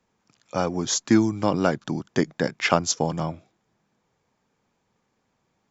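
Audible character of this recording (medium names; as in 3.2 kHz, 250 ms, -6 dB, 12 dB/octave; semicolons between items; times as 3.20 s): noise floor -73 dBFS; spectral tilt -4.5 dB/octave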